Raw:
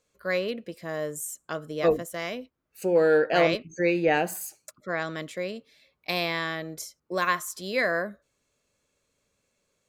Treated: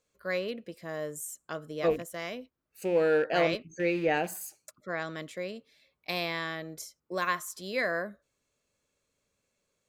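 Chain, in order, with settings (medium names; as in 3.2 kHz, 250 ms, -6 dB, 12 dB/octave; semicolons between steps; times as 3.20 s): rattle on loud lows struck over -35 dBFS, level -31 dBFS; trim -4.5 dB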